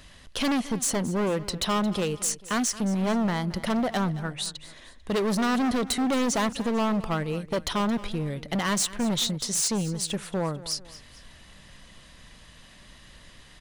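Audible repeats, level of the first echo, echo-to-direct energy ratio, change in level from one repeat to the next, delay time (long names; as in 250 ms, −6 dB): 2, −17.0 dB, −16.0 dB, −7.0 dB, 222 ms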